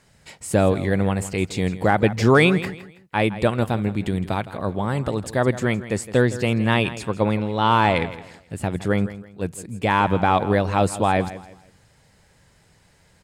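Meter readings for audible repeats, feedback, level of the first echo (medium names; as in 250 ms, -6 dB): 2, 31%, -15.0 dB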